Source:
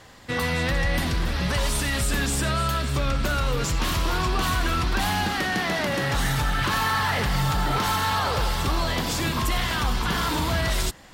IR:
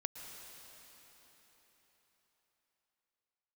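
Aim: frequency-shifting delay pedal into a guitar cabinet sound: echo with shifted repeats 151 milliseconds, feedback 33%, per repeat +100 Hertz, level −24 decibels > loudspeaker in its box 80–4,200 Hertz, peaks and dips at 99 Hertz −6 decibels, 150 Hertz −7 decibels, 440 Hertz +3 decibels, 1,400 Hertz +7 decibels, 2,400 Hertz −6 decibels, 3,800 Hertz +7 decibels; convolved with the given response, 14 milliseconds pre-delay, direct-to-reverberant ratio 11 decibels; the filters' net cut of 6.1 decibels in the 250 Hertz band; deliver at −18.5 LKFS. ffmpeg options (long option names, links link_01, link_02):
-filter_complex "[0:a]equalizer=frequency=250:width_type=o:gain=-7,asplit=2[link_01][link_02];[1:a]atrim=start_sample=2205,adelay=14[link_03];[link_02][link_03]afir=irnorm=-1:irlink=0,volume=-10dB[link_04];[link_01][link_04]amix=inputs=2:normalize=0,asplit=3[link_05][link_06][link_07];[link_06]adelay=151,afreqshift=100,volume=-24dB[link_08];[link_07]adelay=302,afreqshift=200,volume=-33.6dB[link_09];[link_05][link_08][link_09]amix=inputs=3:normalize=0,highpass=80,equalizer=frequency=99:width_type=q:width=4:gain=-6,equalizer=frequency=150:width_type=q:width=4:gain=-7,equalizer=frequency=440:width_type=q:width=4:gain=3,equalizer=frequency=1400:width_type=q:width=4:gain=7,equalizer=frequency=2400:width_type=q:width=4:gain=-6,equalizer=frequency=3800:width_type=q:width=4:gain=7,lowpass=frequency=4200:width=0.5412,lowpass=frequency=4200:width=1.3066,volume=5.5dB"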